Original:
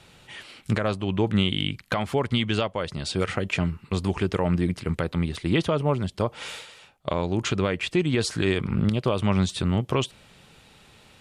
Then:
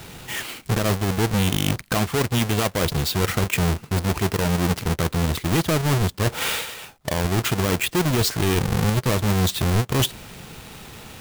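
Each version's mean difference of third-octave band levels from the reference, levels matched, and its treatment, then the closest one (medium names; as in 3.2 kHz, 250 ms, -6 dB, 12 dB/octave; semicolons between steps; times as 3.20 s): 10.5 dB: square wave that keeps the level; treble shelf 7 kHz +4 dB; reverse; compression 6:1, threshold -27 dBFS, peak gain reduction 12 dB; reverse; band-stop 570 Hz, Q 12; trim +8 dB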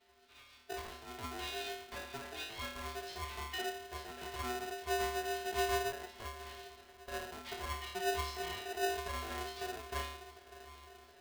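14.0 dB: feedback comb 160 Hz, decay 0.64 s, harmonics odd, mix 100%; echo that smears into a reverb 676 ms, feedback 62%, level -16 dB; resampled via 11.025 kHz; polarity switched at an audio rate 550 Hz; trim +2.5 dB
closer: first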